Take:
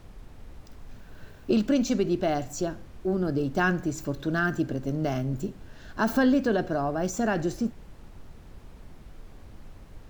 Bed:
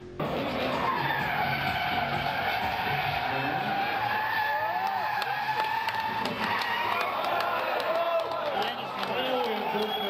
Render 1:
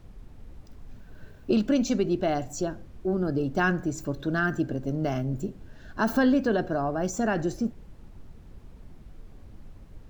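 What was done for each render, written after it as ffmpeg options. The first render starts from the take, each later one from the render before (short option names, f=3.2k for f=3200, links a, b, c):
-af "afftdn=nr=6:nf=-49"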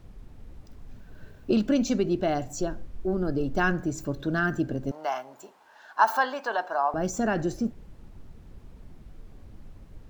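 -filter_complex "[0:a]asplit=3[a][b][c];[a]afade=t=out:st=2.6:d=0.02[d];[b]asubboost=boost=4:cutoff=51,afade=t=in:st=2.6:d=0.02,afade=t=out:st=3.74:d=0.02[e];[c]afade=t=in:st=3.74:d=0.02[f];[d][e][f]amix=inputs=3:normalize=0,asettb=1/sr,asplit=3[g][h][i];[g]atrim=end=4.914[j];[h]atrim=start=4.91:end=6.94,asetpts=PTS-STARTPTS,afade=t=in:d=0.004:c=qsin,afade=t=out:st=2.026:d=0.004:c=qsin,highpass=f=900:t=q:w=4.2[k];[i]atrim=start=6.936[l];[j][k]acrossfade=d=0.004:c1=hsin:c2=qsin[m];[m][l]acrossfade=d=0.004:c1=qsin:c2=hsin"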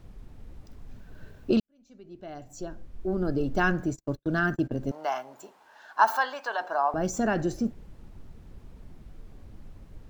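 -filter_complex "[0:a]asplit=3[a][b][c];[a]afade=t=out:st=3.9:d=0.02[d];[b]agate=range=-48dB:threshold=-34dB:ratio=16:release=100:detection=peak,afade=t=in:st=3.9:d=0.02,afade=t=out:st=4.72:d=0.02[e];[c]afade=t=in:st=4.72:d=0.02[f];[d][e][f]amix=inputs=3:normalize=0,asettb=1/sr,asplit=3[g][h][i];[g]atrim=end=6.164[j];[h]atrim=start=6.16:end=6.61,asetpts=PTS-STARTPTS,afade=t=in:d=0.004:c=qsin,afade=t=out:st=0.446:d=0.004:c=qsin,highpass=f=740:p=1[k];[i]atrim=start=6.606[l];[j][k]acrossfade=d=0.004:c1=hsin:c2=qsin[m];[m][l]acrossfade=d=0.004:c1=qsin:c2=hsin,asplit=2[n][o];[n]atrim=end=1.6,asetpts=PTS-STARTPTS,afade=t=out:st=1.596:d=0.004:c=hsin[p];[o]atrim=start=1.6,asetpts=PTS-STARTPTS,afade=t=in:d=1.65:c=qua[q];[p][q]concat=n=2:v=0:a=1"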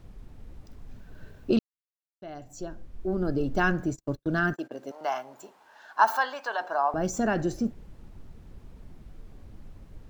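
-filter_complex "[0:a]asettb=1/sr,asplit=3[a][b][c];[a]atrim=end=4.534[d];[b]atrim=start=4.53:end=5.01,asetpts=PTS-STARTPTS,afade=t=in:d=0.004:c=qsin,afade=t=out:st=0.476:d=0.004:c=qsin,highpass=480[e];[c]atrim=start=5.006[f];[d][e]acrossfade=d=0.004:c1=hsin:c2=qsin[g];[g][f]acrossfade=d=0.004:c1=qsin:c2=hsin,asplit=3[h][i][j];[h]atrim=end=1.59,asetpts=PTS-STARTPTS,afade=t=out:st=1.586:d=0.004:c=hsin[k];[i]atrim=start=1.59:end=2.22,asetpts=PTS-STARTPTS,volume=0[l];[j]atrim=start=2.22,asetpts=PTS-STARTPTS,afade=t=in:d=0.004:c=hsin[m];[k][l][m]concat=n=3:v=0:a=1"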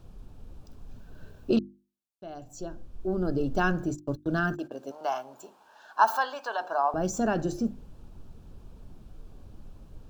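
-af "equalizer=f=2k:t=o:w=0.31:g=-13.5,bandreject=f=50:t=h:w=6,bandreject=f=100:t=h:w=6,bandreject=f=150:t=h:w=6,bandreject=f=200:t=h:w=6,bandreject=f=250:t=h:w=6,bandreject=f=300:t=h:w=6,bandreject=f=350:t=h:w=6"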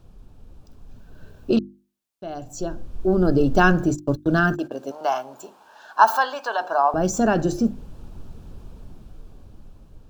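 -af "dynaudnorm=f=410:g=9:m=12dB"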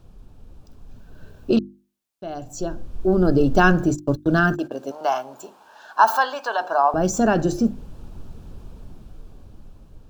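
-af "volume=1dB,alimiter=limit=-3dB:level=0:latency=1"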